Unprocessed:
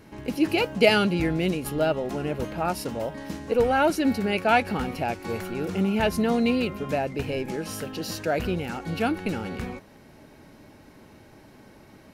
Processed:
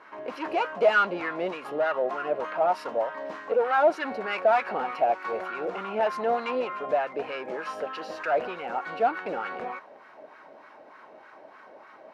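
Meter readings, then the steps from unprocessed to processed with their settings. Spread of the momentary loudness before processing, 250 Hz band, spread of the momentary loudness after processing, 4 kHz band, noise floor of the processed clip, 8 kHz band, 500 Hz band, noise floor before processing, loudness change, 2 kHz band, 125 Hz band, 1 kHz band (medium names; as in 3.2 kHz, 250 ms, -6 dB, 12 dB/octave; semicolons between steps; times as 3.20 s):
11 LU, -13.5 dB, 11 LU, -9.5 dB, -51 dBFS, under -15 dB, 0.0 dB, -52 dBFS, -2.0 dB, -0.5 dB, under -20 dB, +2.0 dB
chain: band-stop 840 Hz, Q 13; overdrive pedal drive 25 dB, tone 5.1 kHz, clips at -3.5 dBFS; wah-wah 3.3 Hz 610–1300 Hz, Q 2.5; trim -4.5 dB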